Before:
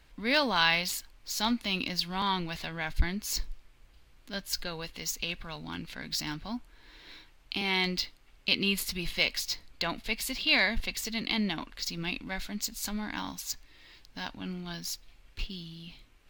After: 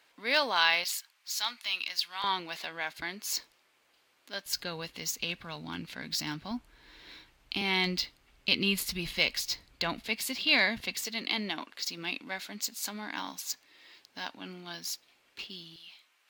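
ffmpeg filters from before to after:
ffmpeg -i in.wav -af "asetnsamples=nb_out_samples=441:pad=0,asendcmd='0.84 highpass f 1200;2.24 highpass f 410;4.46 highpass f 100;6.51 highpass f 45;10.06 highpass f 140;11.04 highpass f 310;15.76 highpass f 880',highpass=450" out.wav

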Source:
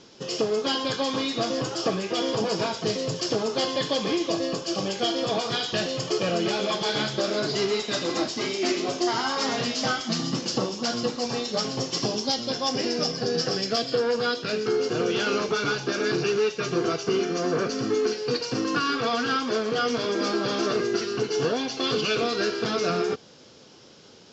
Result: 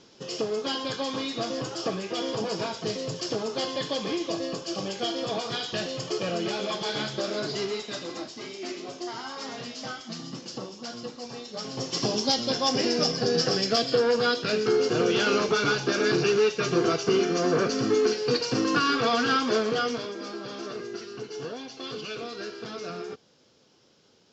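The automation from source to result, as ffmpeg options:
ffmpeg -i in.wav -af "volume=8dB,afade=type=out:start_time=7.46:duration=0.78:silence=0.473151,afade=type=in:start_time=11.55:duration=0.67:silence=0.251189,afade=type=out:start_time=19.59:duration=0.55:silence=0.237137" out.wav

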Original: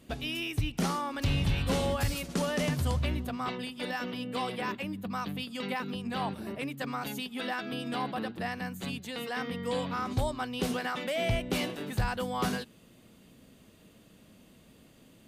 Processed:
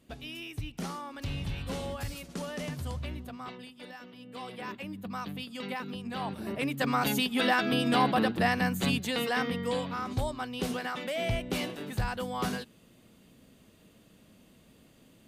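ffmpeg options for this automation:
ffmpeg -i in.wav -af "volume=15.5dB,afade=type=out:start_time=3.33:duration=0.8:silence=0.446684,afade=type=in:start_time=4.13:duration=0.9:silence=0.266073,afade=type=in:start_time=6.24:duration=0.84:silence=0.281838,afade=type=out:start_time=8.95:duration=0.91:silence=0.316228" out.wav

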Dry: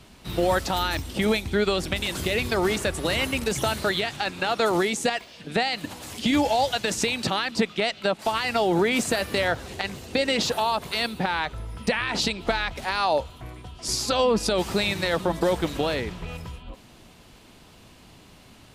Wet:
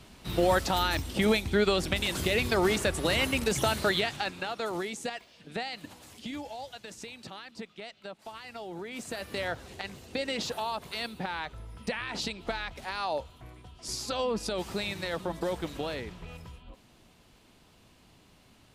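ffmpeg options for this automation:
ffmpeg -i in.wav -af "volume=7.5dB,afade=type=out:start_time=4.03:duration=0.5:silence=0.354813,afade=type=out:start_time=5.9:duration=0.53:silence=0.421697,afade=type=in:start_time=8.88:duration=0.55:silence=0.334965" out.wav

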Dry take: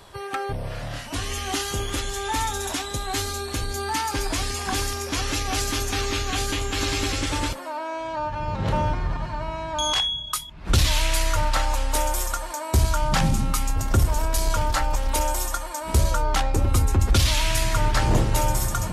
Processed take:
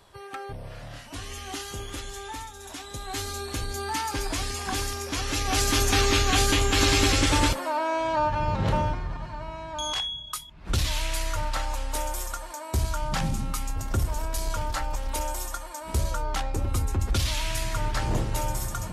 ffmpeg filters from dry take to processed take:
ffmpeg -i in.wav -af "volume=12dB,afade=type=out:start_time=2.19:duration=0.34:silence=0.398107,afade=type=in:start_time=2.53:duration=0.9:silence=0.223872,afade=type=in:start_time=5.26:duration=0.63:silence=0.421697,afade=type=out:start_time=8.2:duration=0.85:silence=0.298538" out.wav

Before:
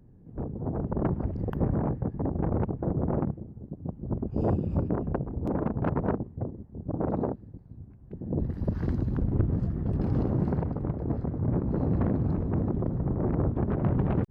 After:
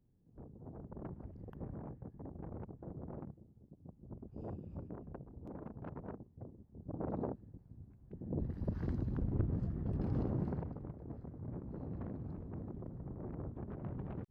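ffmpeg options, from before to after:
ffmpeg -i in.wav -af "volume=-9dB,afade=type=in:start_time=6.3:duration=1.09:silence=0.316228,afade=type=out:start_time=10.29:duration=0.66:silence=0.375837" out.wav

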